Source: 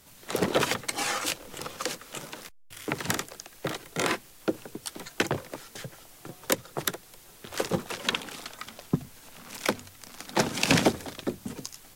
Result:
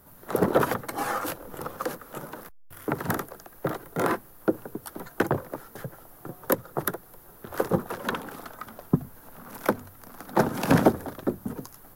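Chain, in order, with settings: band shelf 4300 Hz -15.5 dB 2.4 oct; gain +4 dB

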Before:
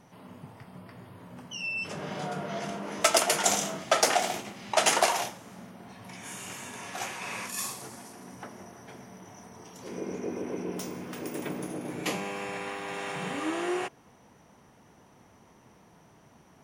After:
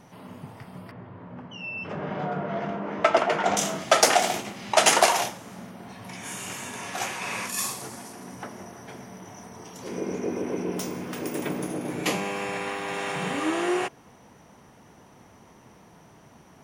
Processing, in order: 0.91–3.57 LPF 1900 Hz 12 dB/oct; gain +5 dB

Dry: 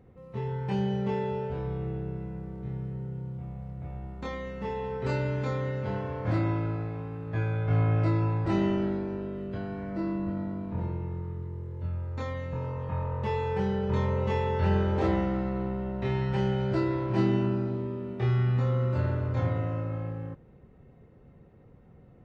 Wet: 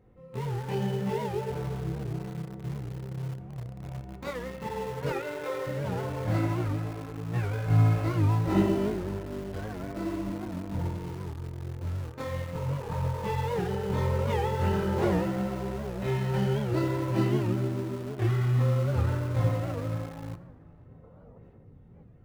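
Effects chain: 5.1–5.67 brick-wall FIR band-pass 300–4000 Hz; chorus voices 6, 0.97 Hz, delay 21 ms, depth 4.1 ms; in parallel at -10 dB: bit-crush 6-bit; on the sum: darkening echo 0.497 s, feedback 51%, low-pass 1700 Hz, level -23 dB; on a send at -13 dB: reverb RT60 2.3 s, pre-delay 5 ms; 21.03–21.38 on the sum: spectral gain 440–1500 Hz +9 dB; record warp 78 rpm, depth 160 cents

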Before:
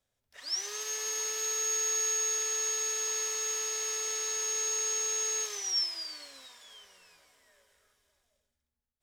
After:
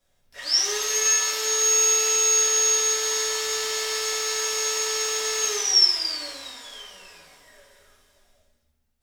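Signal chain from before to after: shoebox room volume 110 m³, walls mixed, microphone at 1.8 m; gain +5 dB

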